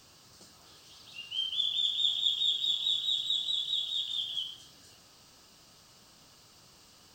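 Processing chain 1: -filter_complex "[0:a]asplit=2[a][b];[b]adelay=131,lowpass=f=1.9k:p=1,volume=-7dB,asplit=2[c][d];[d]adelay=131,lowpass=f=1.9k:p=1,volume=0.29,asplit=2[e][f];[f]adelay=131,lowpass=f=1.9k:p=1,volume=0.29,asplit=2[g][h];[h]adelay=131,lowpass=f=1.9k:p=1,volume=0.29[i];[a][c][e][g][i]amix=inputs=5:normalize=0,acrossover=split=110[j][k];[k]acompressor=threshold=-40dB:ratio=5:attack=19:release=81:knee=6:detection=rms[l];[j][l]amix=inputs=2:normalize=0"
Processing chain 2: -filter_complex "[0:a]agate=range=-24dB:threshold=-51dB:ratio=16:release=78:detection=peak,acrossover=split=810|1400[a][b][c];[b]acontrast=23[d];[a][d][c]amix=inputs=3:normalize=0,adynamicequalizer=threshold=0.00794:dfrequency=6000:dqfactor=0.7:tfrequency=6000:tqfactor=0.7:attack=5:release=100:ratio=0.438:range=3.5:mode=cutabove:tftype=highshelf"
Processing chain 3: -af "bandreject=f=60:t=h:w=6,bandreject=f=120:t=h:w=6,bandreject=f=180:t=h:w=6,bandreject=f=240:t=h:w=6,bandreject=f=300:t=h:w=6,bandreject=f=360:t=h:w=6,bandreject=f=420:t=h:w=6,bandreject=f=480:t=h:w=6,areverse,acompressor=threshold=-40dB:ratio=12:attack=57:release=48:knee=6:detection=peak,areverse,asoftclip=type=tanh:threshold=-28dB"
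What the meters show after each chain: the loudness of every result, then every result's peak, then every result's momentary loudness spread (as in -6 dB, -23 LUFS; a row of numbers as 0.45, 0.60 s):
-38.0, -29.0, -36.0 LUFS; -28.5, -15.0, -29.0 dBFS; 19, 8, 21 LU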